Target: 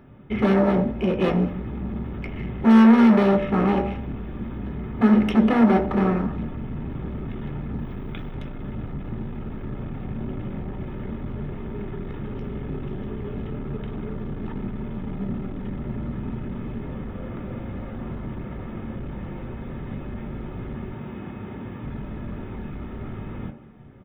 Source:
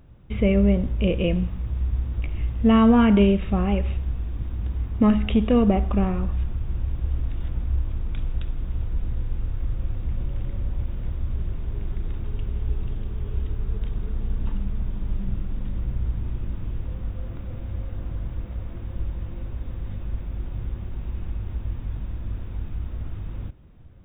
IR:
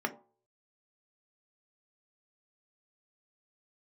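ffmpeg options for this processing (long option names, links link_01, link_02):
-filter_complex "[0:a]asettb=1/sr,asplit=3[link_01][link_02][link_03];[link_01]atrim=end=0.814[link_04];[link_02]atrim=start=0.81:end=1.22,asetpts=PTS-STARTPTS,afade=type=in:duration=0.004:curve=qsin,afade=type=out:start_time=0.406:duration=0.004:curve=qsin,acompressor=threshold=-23dB:ratio=16[link_05];[link_03]atrim=start=1.216[link_06];[link_04][link_05]acrossfade=duration=0.004:curve1=hsin:curve2=qsin[link_07];[link_07][link_06]acrossfade=duration=0.004:curve1=qsin:curve2=hsin,asettb=1/sr,asplit=3[link_08][link_09][link_10];[link_08]atrim=end=7.794[link_11];[link_09]atrim=start=7.79:end=8.31,asetpts=PTS-STARTPTS,afade=type=in:duration=0.004:curve=qsin,afade=type=out:start_time=0.516:duration=0.004:curve=qsin,bass=frequency=250:gain=-1,treble=frequency=4000:gain=7[link_12];[link_10]atrim=start=8.306[link_13];[link_11][link_12]acrossfade=duration=0.004:curve1=hsin:curve2=qsin[link_14];[link_14][link_13]acrossfade=duration=0.004:curve1=qsin:curve2=hsin,asettb=1/sr,asplit=3[link_15][link_16][link_17];[link_15]atrim=end=20.934[link_18];[link_16]atrim=start=20.93:end=21.82,asetpts=PTS-STARTPTS,afade=type=in:duration=0.004:curve=qsin,afade=type=out:start_time=0.886:duration=0.004:curve=qsin,highpass=110[link_19];[link_17]atrim=start=21.816[link_20];[link_18][link_19]acrossfade=duration=0.004:curve1=hsin:curve2=qsin[link_21];[link_21][link_20]acrossfade=duration=0.004:curve1=qsin:curve2=hsin,asoftclip=type=hard:threshold=-25dB,asplit=2[link_22][link_23];[link_23]adelay=190,highpass=300,lowpass=3400,asoftclip=type=hard:threshold=-33.5dB,volume=-16dB[link_24];[link_22][link_24]amix=inputs=2:normalize=0[link_25];[1:a]atrim=start_sample=2205[link_26];[link_25][link_26]afir=irnorm=-1:irlink=0,volume=2dB"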